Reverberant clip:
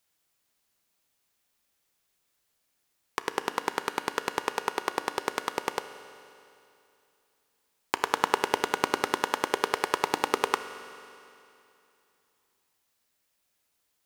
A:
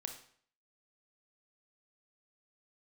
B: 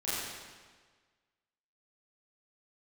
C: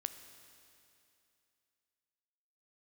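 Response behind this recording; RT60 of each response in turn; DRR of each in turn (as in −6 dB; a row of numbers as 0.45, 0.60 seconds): C; 0.55, 1.5, 2.7 seconds; 5.0, −12.5, 9.0 decibels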